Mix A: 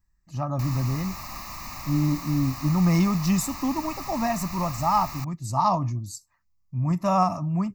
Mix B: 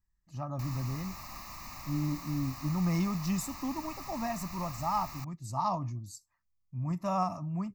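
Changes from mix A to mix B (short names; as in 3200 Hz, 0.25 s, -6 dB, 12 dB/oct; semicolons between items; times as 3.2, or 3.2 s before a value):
speech -9.0 dB; background -7.5 dB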